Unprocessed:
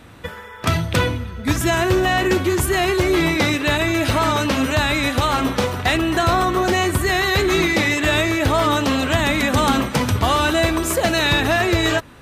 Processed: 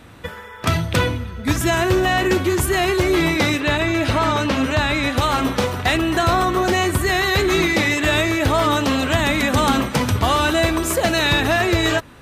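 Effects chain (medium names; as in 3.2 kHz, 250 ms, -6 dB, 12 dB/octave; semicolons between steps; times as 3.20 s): 3.60–5.17 s: treble shelf 8.3 kHz -11.5 dB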